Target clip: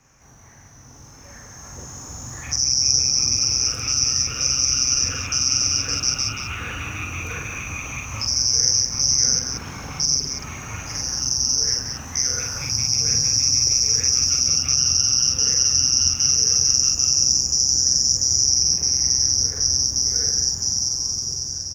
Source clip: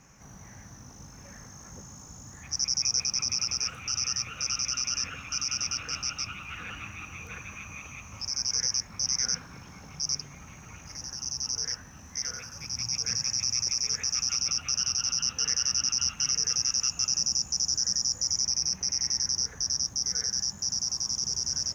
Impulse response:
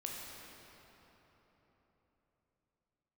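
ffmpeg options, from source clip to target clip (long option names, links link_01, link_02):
-filter_complex "[0:a]equalizer=frequency=190:width=3.8:gain=-10.5,aecho=1:1:182:0.299,acrossover=split=320|530|5700[link_01][link_02][link_03][link_04];[link_03]acompressor=threshold=-44dB:ratio=6[link_05];[link_01][link_02][link_05][link_04]amix=inputs=4:normalize=0,asplit=2[link_06][link_07];[link_07]adelay=46,volume=-2dB[link_08];[link_06][link_08]amix=inputs=2:normalize=0,dynaudnorm=framelen=740:gausssize=5:maxgain=14.5dB,volume=-1.5dB"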